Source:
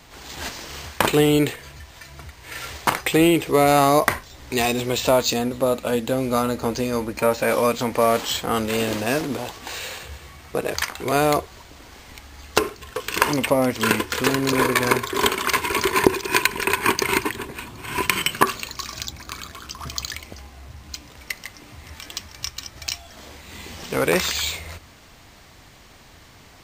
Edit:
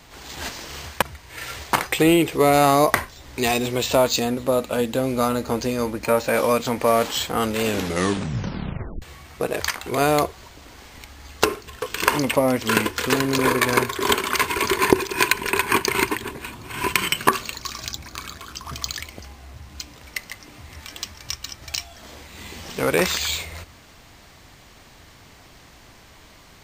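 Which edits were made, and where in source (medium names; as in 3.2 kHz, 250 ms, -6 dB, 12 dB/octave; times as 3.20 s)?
1.02–2.16 s: delete
8.78 s: tape stop 1.38 s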